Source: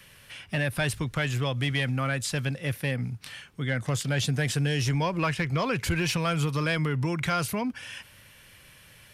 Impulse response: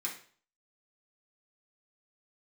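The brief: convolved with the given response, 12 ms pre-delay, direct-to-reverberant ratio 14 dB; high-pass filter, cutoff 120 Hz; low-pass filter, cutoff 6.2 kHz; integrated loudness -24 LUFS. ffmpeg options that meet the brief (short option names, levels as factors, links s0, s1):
-filter_complex "[0:a]highpass=120,lowpass=6200,asplit=2[s0][s1];[1:a]atrim=start_sample=2205,adelay=12[s2];[s1][s2]afir=irnorm=-1:irlink=0,volume=0.158[s3];[s0][s3]amix=inputs=2:normalize=0,volume=1.78"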